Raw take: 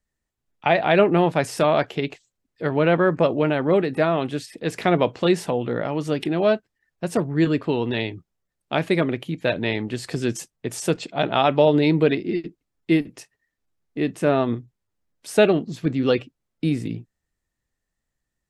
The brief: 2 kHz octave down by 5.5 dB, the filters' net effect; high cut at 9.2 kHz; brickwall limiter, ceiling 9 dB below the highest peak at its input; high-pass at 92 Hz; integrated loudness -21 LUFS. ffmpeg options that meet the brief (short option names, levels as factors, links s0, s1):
-af "highpass=92,lowpass=9200,equalizer=f=2000:t=o:g=-7.5,volume=1.88,alimiter=limit=0.376:level=0:latency=1"